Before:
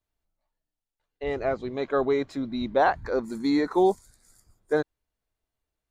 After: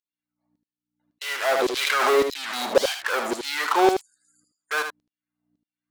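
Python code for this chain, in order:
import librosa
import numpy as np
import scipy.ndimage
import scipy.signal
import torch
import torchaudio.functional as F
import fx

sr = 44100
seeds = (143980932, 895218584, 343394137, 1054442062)

p1 = fx.spec_topn(x, sr, count=64)
p2 = fx.fuzz(p1, sr, gain_db=44.0, gate_db=-41.0)
p3 = p1 + (p2 * 10.0 ** (-5.5 / 20.0))
p4 = fx.add_hum(p3, sr, base_hz=60, snr_db=30)
p5 = fx.filter_lfo_highpass(p4, sr, shape='saw_down', hz=1.8, low_hz=430.0, high_hz=5100.0, q=1.6)
p6 = p5 + fx.echo_single(p5, sr, ms=77, db=-7.0, dry=0)
p7 = fx.pre_swell(p6, sr, db_per_s=28.0, at=(1.53, 2.67))
y = p7 * 10.0 ** (-2.0 / 20.0)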